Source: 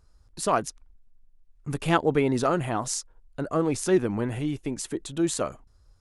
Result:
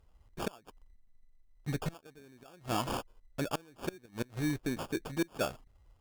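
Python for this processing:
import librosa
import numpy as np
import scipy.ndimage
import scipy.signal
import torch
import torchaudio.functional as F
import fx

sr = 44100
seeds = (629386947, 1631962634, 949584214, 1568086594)

y = fx.sample_hold(x, sr, seeds[0], rate_hz=2000.0, jitter_pct=0)
y = fx.gate_flip(y, sr, shuts_db=-17.0, range_db=-29)
y = fx.clip_asym(y, sr, top_db=-22.0, bottom_db=-20.0)
y = F.gain(torch.from_numpy(y), -3.5).numpy()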